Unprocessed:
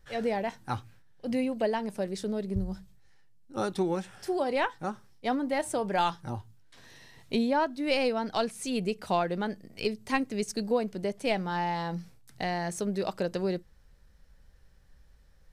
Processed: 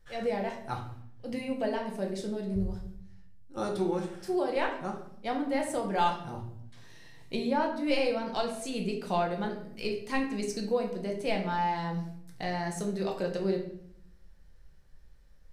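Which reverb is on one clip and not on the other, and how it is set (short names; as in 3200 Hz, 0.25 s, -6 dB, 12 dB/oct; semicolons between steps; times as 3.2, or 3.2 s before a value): shoebox room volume 140 m³, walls mixed, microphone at 0.82 m; gain -4.5 dB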